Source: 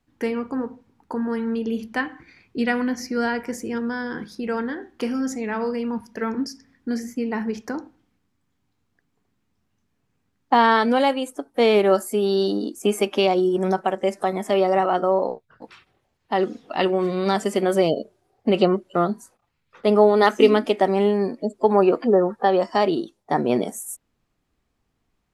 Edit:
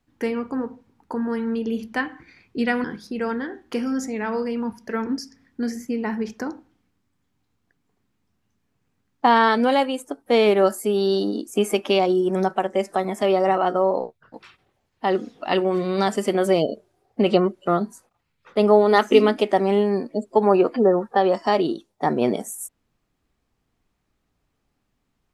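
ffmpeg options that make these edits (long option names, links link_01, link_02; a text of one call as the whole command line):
ffmpeg -i in.wav -filter_complex "[0:a]asplit=2[link_01][link_02];[link_01]atrim=end=2.842[link_03];[link_02]atrim=start=4.118[link_04];[link_03][link_04]acrossfade=duration=0.004:curve1=hsin:curve2=hsin" out.wav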